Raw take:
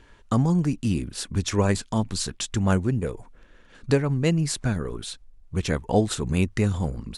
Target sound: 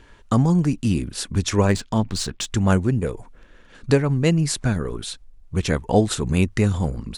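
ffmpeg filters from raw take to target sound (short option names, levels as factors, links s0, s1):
-filter_complex "[0:a]asettb=1/sr,asplit=3[s0][s1][s2];[s0]atrim=end=1.654[s3];[s1]atrim=start=1.65:end=2.47,asetpts=PTS-STARTPTS,afade=t=in:d=0.004:c=qsin,afade=t=out:st=0.816:d=0.004:c=qsin,adynamicsmooth=sensitivity=6:basefreq=5200[s4];[s2]atrim=start=2.466[s5];[s3][s4]acrossfade=d=0.004:c1=hsin:c2=qsin[s6];[s6][s5]acrossfade=d=0.004:c1=qsin:c2=hsin,volume=1.5"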